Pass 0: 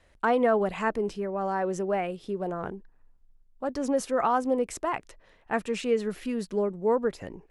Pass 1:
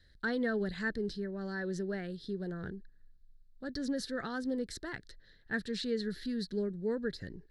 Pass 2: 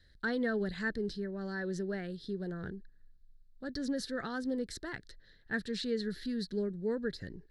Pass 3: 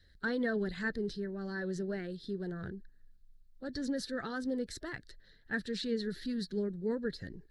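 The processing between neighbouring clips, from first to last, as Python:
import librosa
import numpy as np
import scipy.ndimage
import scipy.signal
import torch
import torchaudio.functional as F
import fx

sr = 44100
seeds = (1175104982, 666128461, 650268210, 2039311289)

y1 = fx.curve_eq(x, sr, hz=(150.0, 250.0, 420.0, 770.0, 1100.0, 1700.0, 2500.0, 4100.0, 6500.0), db=(0, -5, -8, -22, -22, 2, -20, 9, -10))
y2 = y1
y3 = fx.spec_quant(y2, sr, step_db=15)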